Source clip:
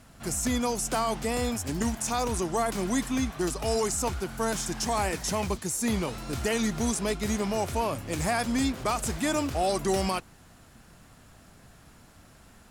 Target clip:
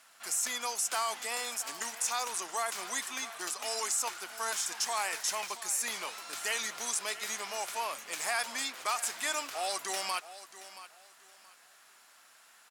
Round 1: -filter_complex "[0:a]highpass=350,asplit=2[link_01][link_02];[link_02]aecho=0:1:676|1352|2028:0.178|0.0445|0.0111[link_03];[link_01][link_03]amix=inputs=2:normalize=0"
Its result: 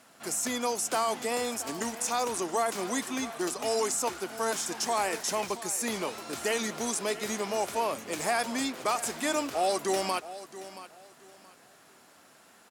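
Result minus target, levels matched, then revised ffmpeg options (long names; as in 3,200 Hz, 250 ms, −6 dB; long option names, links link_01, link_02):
250 Hz band +15.5 dB
-filter_complex "[0:a]highpass=1100,asplit=2[link_01][link_02];[link_02]aecho=0:1:676|1352|2028:0.178|0.0445|0.0111[link_03];[link_01][link_03]amix=inputs=2:normalize=0"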